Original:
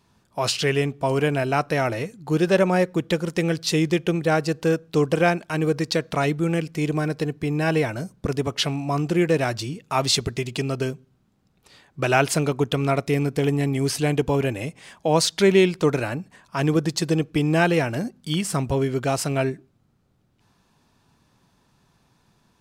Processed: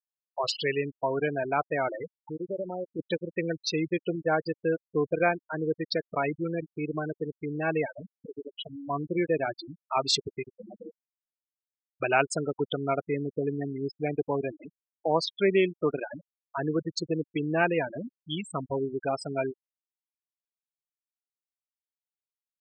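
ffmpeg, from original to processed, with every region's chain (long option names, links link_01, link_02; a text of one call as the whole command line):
ffmpeg -i in.wav -filter_complex "[0:a]asettb=1/sr,asplit=3[link_01][link_02][link_03];[link_01]atrim=end=2.214[link_04];[link_02]atrim=start=2.21:end=2.99,asetpts=PTS-STARTPTS,afade=type=in:duration=0.004:curve=qsin,afade=type=out:start_time=0.776:duration=0.004:curve=qsin,highpass=49,equalizer=frequency=1800:width_type=o:width=0.99:gain=-5,acompressor=threshold=-25dB:ratio=3:attack=3.2:release=140:knee=1:detection=peak[link_05];[link_03]atrim=start=2.986[link_06];[link_04][link_05]acrossfade=duration=0.004:curve1=hsin:curve2=qsin[link_07];[link_07][link_06]acrossfade=duration=0.004:curve1=qsin:curve2=hsin,asettb=1/sr,asplit=3[link_08][link_09][link_10];[link_08]atrim=end=8.114[link_11];[link_09]atrim=start=8.11:end=8.9,asetpts=PTS-STARTPTS,afade=type=in:duration=0.004:curve=qsin,afade=type=out:start_time=0.786:duration=0.004:curve=qsin,lowpass=4000,acompressor=threshold=-25dB:ratio=5:attack=3.2:release=140:knee=1:detection=peak[link_12];[link_10]atrim=start=8.896[link_13];[link_11][link_12]acrossfade=duration=0.004:curve1=hsin:curve2=qsin[link_14];[link_14][link_13]acrossfade=duration=0.004:curve1=qsin:curve2=hsin,asettb=1/sr,asplit=3[link_15][link_16][link_17];[link_15]atrim=end=10.534[link_18];[link_16]atrim=start=10.53:end=12,asetpts=PTS-STARTPTS,afade=type=in:duration=0.004:curve=qsin,afade=type=out:start_time=1.466:duration=0.004:curve=qsin,bandreject=frequency=50:width_type=h:width=6,bandreject=frequency=100:width_type=h:width=6,bandreject=frequency=150:width_type=h:width=6,bandreject=frequency=200:width_type=h:width=6,bandreject=frequency=250:width_type=h:width=6,bandreject=frequency=300:width_type=h:width=6,bandreject=frequency=350:width_type=h:width=6,bandreject=frequency=400:width_type=h:width=6,bandreject=frequency=450:width_type=h:width=6,bandreject=frequency=500:width_type=h:width=6,aeval=exprs='val(0)*sin(2*PI*78*n/s)':channel_layout=same,asoftclip=type=hard:threshold=-26.5dB[link_19];[link_17]atrim=start=11.996[link_20];[link_18][link_19]acrossfade=duration=0.004:curve1=hsin:curve2=qsin[link_21];[link_21][link_20]acrossfade=duration=0.004:curve1=qsin:curve2=hsin,asettb=1/sr,asplit=3[link_22][link_23][link_24];[link_22]atrim=end=13.484[link_25];[link_23]atrim=start=13.48:end=16.57,asetpts=PTS-STARTPTS,afade=type=in:duration=0.004:curve=qsin,afade=type=out:start_time=3.086:duration=0.004:curve=qsin,highshelf=frequency=5500:gain=-6.5,aeval=exprs='sgn(val(0))*max(abs(val(0))-0.00562,0)':channel_layout=same,acrusher=bits=4:mix=0:aa=0.5[link_26];[link_24]atrim=start=16.566[link_27];[link_25][link_26]acrossfade=duration=0.004:curve1=hsin:curve2=qsin[link_28];[link_28][link_27]acrossfade=duration=0.004:curve1=qsin:curve2=hsin,highpass=frequency=400:poles=1,afftfilt=real='re*gte(hypot(re,im),0.112)':imag='im*gte(hypot(re,im),0.112)':win_size=1024:overlap=0.75,equalizer=frequency=13000:width_type=o:width=0.66:gain=-8,volume=-3dB" out.wav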